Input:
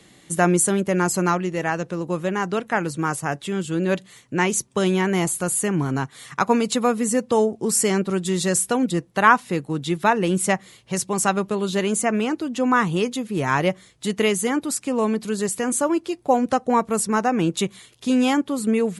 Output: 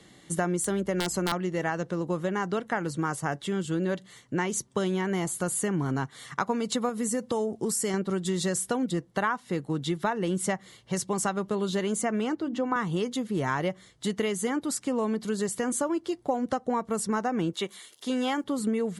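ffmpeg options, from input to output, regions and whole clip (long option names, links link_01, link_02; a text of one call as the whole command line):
ffmpeg -i in.wav -filter_complex "[0:a]asettb=1/sr,asplit=3[link_01][link_02][link_03];[link_01]atrim=end=0.644[link_04];[link_02]atrim=start=0.64:end=1.32,asetpts=PTS-STARTPTS,afade=type=in:duration=0.004:curve=qsin,afade=type=out:start_time=0.676:duration=0.004:curve=qsin,highpass=frequency=160:width=0.5412,highpass=frequency=160:width=1.3066,aeval=exprs='val(0)+0.00447*(sin(2*PI*60*n/s)+sin(2*PI*2*60*n/s)/2+sin(2*PI*3*60*n/s)/3+sin(2*PI*4*60*n/s)/4+sin(2*PI*5*60*n/s)/5)':channel_layout=same,aeval=exprs='(mod(2.99*val(0)+1,2)-1)/2.99':channel_layout=same[link_05];[link_03]atrim=start=1.316[link_06];[link_04][link_05]acrossfade=duration=0.004:curve1=hsin:curve2=qsin[link_07];[link_07][link_06]acrossfade=duration=0.004:curve1=qsin:curve2=hsin,asettb=1/sr,asplit=3[link_08][link_09][link_10];[link_08]atrim=end=6.894[link_11];[link_09]atrim=start=6.89:end=7.94,asetpts=PTS-STARTPTS,afade=type=in:duration=0.004:curve=qsin,afade=type=out:start_time=1.046:duration=0.004:curve=qsin,highshelf=frequency=9000:gain=10.5,acompressor=threshold=-21dB:ratio=2.5:attack=3.2:release=140:knee=1:detection=peak[link_12];[link_10]atrim=start=7.936[link_13];[link_11][link_12]acrossfade=duration=0.004:curve1=hsin:curve2=qsin[link_14];[link_14][link_13]acrossfade=duration=0.004:curve1=qsin:curve2=hsin,asettb=1/sr,asplit=3[link_15][link_16][link_17];[link_15]atrim=end=12.354[link_18];[link_16]atrim=start=12.35:end=12.76,asetpts=PTS-STARTPTS,afade=type=in:duration=0.004:curve=qsin,afade=type=out:start_time=0.406:duration=0.004:curve=qsin,lowpass=frequency=2500:poles=1,bandreject=frequency=50:width_type=h:width=6,bandreject=frequency=100:width_type=h:width=6,bandreject=frequency=150:width_type=h:width=6,bandreject=frequency=200:width_type=h:width=6,bandreject=frequency=250:width_type=h:width=6,bandreject=frequency=300:width_type=h:width=6,bandreject=frequency=350:width_type=h:width=6[link_19];[link_17]atrim=start=12.756[link_20];[link_18][link_19]acrossfade=duration=0.004:curve1=hsin:curve2=qsin[link_21];[link_21][link_20]acrossfade=duration=0.004:curve1=qsin:curve2=hsin,asettb=1/sr,asplit=3[link_22][link_23][link_24];[link_22]atrim=end=17.534[link_25];[link_23]atrim=start=17.53:end=18.44,asetpts=PTS-STARTPTS,afade=type=in:duration=0.004:curve=qsin,afade=type=out:start_time=0.906:duration=0.004:curve=qsin,aemphasis=mode=production:type=bsi,acrossover=split=3800[link_26][link_27];[link_27]acompressor=threshold=-41dB:ratio=4:attack=1:release=60[link_28];[link_26][link_28]amix=inputs=2:normalize=0,highpass=220[link_29];[link_24]atrim=start=18.436[link_30];[link_25][link_29]acrossfade=duration=0.004:curve1=hsin:curve2=qsin[link_31];[link_31][link_30]acrossfade=duration=0.004:curve1=qsin:curve2=hsin,highshelf=frequency=10000:gain=-8.5,bandreject=frequency=2500:width=6.2,acompressor=threshold=-22dB:ratio=6,volume=-2dB" out.wav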